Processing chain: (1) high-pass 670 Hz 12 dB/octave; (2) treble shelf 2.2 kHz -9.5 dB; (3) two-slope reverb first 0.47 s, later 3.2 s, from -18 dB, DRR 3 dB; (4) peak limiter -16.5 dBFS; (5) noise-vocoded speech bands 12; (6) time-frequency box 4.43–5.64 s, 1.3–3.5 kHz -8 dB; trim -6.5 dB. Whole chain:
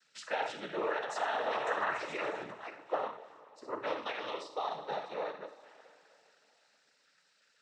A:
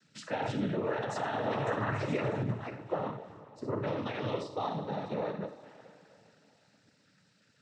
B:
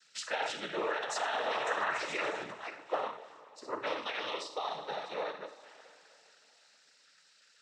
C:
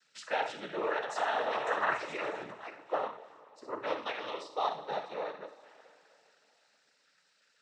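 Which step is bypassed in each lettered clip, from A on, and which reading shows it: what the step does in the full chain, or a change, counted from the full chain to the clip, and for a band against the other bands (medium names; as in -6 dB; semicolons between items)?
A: 1, 125 Hz band +24.5 dB; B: 2, 8 kHz band +8.0 dB; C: 4, loudness change +1.5 LU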